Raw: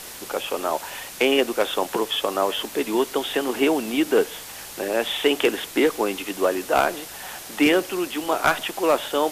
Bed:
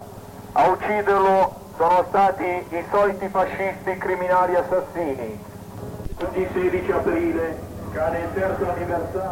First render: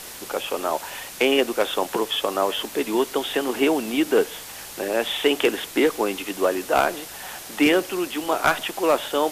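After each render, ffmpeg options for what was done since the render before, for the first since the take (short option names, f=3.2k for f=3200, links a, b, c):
-af anull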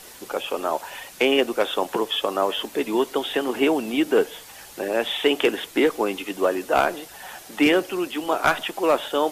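-af "afftdn=nr=7:nf=-38"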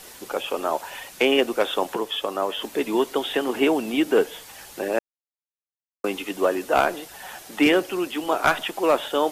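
-filter_complex "[0:a]asplit=5[a][b][c][d][e];[a]atrim=end=1.942[f];[b]atrim=start=1.938:end=2.622,asetpts=PTS-STARTPTS,volume=-3dB[g];[c]atrim=start=2.618:end=4.99,asetpts=PTS-STARTPTS,afade=t=out:st=2.368:d=0.004:c=hsin[h];[d]atrim=start=4.99:end=6.04,asetpts=PTS-STARTPTS,volume=0[i];[e]atrim=start=6.04,asetpts=PTS-STARTPTS,afade=t=in:d=0.004:c=hsin[j];[f][g]acrossfade=d=0.004:c1=hsin:c2=hsin[k];[h][i][j]concat=n=3:v=0:a=1[l];[k][l]acrossfade=d=0.004:c1=hsin:c2=hsin"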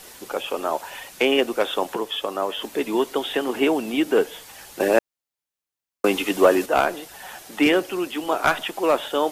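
-filter_complex "[0:a]asettb=1/sr,asplit=3[a][b][c];[a]atrim=end=4.804[d];[b]atrim=start=4.8:end=6.66,asetpts=PTS-STARTPTS,afade=t=in:d=0.004:c=qsin,afade=t=out:st=1.856:d=0.004:c=qsin,acontrast=76[e];[c]atrim=start=6.656[f];[d][e]acrossfade=d=0.004:c1=hsin:c2=qsin[g];[g][f]acrossfade=d=0.004:c1=qsin:c2=hsin"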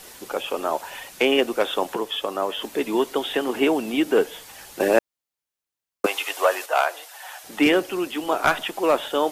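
-filter_complex "[0:a]asettb=1/sr,asplit=3[a][b][c];[a]atrim=end=6.064[d];[b]atrim=start=6.06:end=7.44,asetpts=PTS-STARTPTS,afade=t=in:d=0.004:c=qsin,afade=t=out:st=1.376:d=0.004:c=qsin,highpass=f=600:w=0.5412,highpass=f=600:w=1.3066[e];[c]atrim=start=7.436[f];[d][e]acrossfade=d=0.004:c1=hsin:c2=qsin[g];[g][f]acrossfade=d=0.004:c1=qsin:c2=hsin"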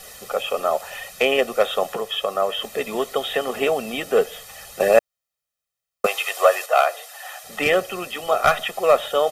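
-af "aecho=1:1:1.6:0.87"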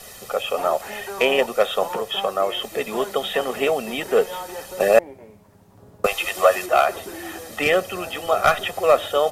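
-filter_complex "[1:a]volume=-15dB[a];[0:a][a]amix=inputs=2:normalize=0"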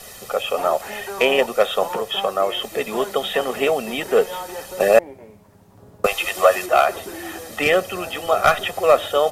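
-af "volume=1.5dB,alimiter=limit=-1dB:level=0:latency=1"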